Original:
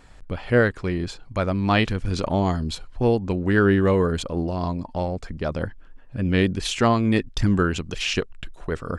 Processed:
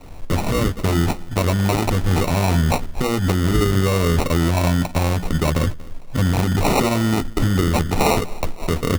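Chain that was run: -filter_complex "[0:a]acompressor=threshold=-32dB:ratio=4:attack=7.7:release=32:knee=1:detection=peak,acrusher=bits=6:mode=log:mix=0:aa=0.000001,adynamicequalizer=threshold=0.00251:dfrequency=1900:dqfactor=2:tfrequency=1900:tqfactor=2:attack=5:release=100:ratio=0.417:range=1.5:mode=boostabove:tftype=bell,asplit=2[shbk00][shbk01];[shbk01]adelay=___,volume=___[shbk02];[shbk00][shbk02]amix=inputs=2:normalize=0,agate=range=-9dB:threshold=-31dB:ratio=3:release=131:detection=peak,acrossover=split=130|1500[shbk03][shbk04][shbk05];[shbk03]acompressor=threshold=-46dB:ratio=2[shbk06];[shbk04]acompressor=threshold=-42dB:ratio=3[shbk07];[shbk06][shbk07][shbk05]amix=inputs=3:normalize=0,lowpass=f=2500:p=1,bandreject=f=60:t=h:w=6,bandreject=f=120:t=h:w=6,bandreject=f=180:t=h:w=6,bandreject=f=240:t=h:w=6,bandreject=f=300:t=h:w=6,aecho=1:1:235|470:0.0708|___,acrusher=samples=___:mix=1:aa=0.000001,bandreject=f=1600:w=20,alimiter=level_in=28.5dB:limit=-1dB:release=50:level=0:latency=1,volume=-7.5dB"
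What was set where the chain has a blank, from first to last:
12, -6.5dB, 0.0177, 27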